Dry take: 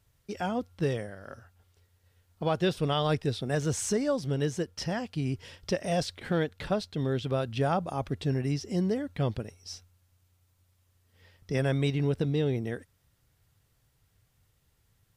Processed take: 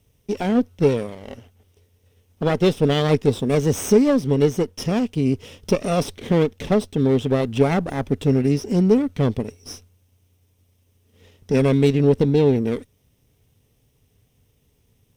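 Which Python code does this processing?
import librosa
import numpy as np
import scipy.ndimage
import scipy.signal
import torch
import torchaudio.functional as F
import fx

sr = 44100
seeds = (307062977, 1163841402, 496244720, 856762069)

y = fx.lower_of_two(x, sr, delay_ms=0.33)
y = fx.small_body(y, sr, hz=(250.0, 420.0), ring_ms=30, db=9)
y = y * 10.0 ** (6.0 / 20.0)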